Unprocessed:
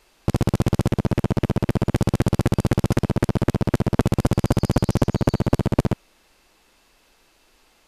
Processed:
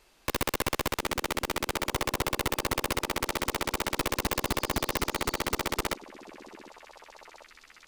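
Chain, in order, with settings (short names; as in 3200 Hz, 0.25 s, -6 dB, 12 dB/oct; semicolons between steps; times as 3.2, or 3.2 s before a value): wrapped overs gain 16 dB; delay with a stepping band-pass 0.745 s, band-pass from 280 Hz, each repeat 1.4 oct, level -11.5 dB; gain -3.5 dB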